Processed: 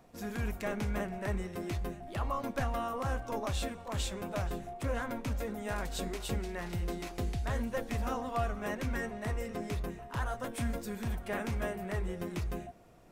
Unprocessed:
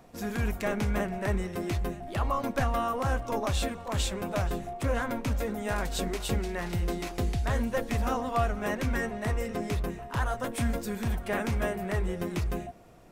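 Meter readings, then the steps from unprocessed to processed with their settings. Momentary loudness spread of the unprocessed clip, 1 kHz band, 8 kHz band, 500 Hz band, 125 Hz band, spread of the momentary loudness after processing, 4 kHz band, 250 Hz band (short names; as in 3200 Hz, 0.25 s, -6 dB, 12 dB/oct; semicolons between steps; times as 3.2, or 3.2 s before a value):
4 LU, -5.5 dB, -5.5 dB, -5.5 dB, -5.5 dB, 4 LU, -5.5 dB, -5.5 dB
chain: reverse; upward compressor, threshold -50 dBFS; reverse; de-hum 387.4 Hz, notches 31; gain -5.5 dB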